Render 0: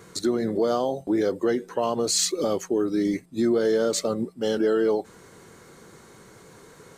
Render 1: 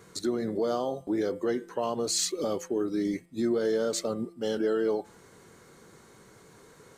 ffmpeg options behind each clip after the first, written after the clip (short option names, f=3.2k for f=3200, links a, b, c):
-af "bandreject=f=170.8:t=h:w=4,bandreject=f=341.6:t=h:w=4,bandreject=f=512.4:t=h:w=4,bandreject=f=683.2:t=h:w=4,bandreject=f=854:t=h:w=4,bandreject=f=1.0248k:t=h:w=4,bandreject=f=1.1956k:t=h:w=4,bandreject=f=1.3664k:t=h:w=4,bandreject=f=1.5372k:t=h:w=4,bandreject=f=1.708k:t=h:w=4,bandreject=f=1.8788k:t=h:w=4,bandreject=f=2.0496k:t=h:w=4,bandreject=f=2.2204k:t=h:w=4,bandreject=f=2.3912k:t=h:w=4,bandreject=f=2.562k:t=h:w=4,bandreject=f=2.7328k:t=h:w=4,bandreject=f=2.9036k:t=h:w=4,bandreject=f=3.0744k:t=h:w=4,bandreject=f=3.2452k:t=h:w=4,volume=-5dB"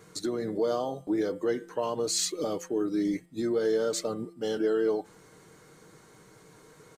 -af "aecho=1:1:6.5:0.37,volume=-1dB"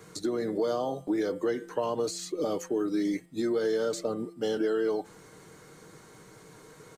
-filter_complex "[0:a]acrossover=split=210|990[a][b][c];[a]acompressor=threshold=-47dB:ratio=4[d];[b]acompressor=threshold=-29dB:ratio=4[e];[c]acompressor=threshold=-42dB:ratio=4[f];[d][e][f]amix=inputs=3:normalize=0,volume=3dB"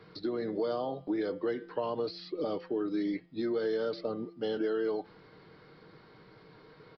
-af "aresample=11025,aresample=44100,volume=-3.5dB"